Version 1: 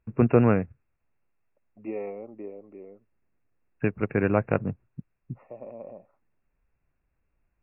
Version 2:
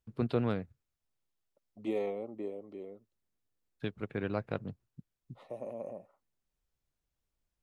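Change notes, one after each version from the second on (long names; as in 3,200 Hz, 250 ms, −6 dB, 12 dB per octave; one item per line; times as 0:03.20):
first voice −11.5 dB
master: remove linear-phase brick-wall low-pass 2,800 Hz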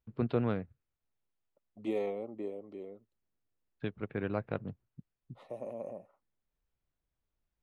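first voice: add low-pass filter 3,000 Hz 12 dB per octave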